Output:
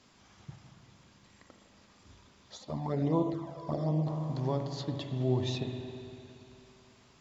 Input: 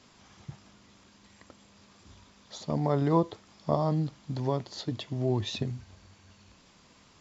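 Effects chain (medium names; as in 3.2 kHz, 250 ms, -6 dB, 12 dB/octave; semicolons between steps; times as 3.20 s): spring tank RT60 2.8 s, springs 39/57 ms, chirp 75 ms, DRR 4 dB; 2.57–4.07 s: touch-sensitive flanger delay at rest 4.6 ms, full sweep at -20 dBFS; trim -4 dB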